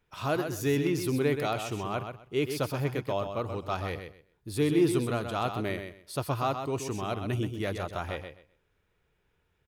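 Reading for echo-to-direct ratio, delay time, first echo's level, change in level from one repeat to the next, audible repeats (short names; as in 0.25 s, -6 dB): -7.5 dB, 0.128 s, -7.5 dB, -14.0 dB, 2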